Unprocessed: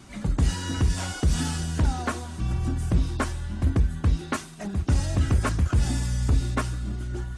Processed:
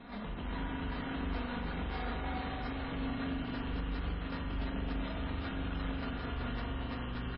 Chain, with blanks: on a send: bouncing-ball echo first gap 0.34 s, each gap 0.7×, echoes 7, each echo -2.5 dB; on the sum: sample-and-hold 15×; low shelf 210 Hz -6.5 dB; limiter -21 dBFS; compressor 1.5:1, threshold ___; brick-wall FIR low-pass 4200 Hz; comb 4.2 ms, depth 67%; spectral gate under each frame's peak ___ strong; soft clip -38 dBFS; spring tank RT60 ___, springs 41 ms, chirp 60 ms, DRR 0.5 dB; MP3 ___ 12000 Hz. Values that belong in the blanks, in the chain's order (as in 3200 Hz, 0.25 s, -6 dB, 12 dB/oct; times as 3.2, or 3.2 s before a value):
-35 dBFS, -40 dB, 2.7 s, 16 kbps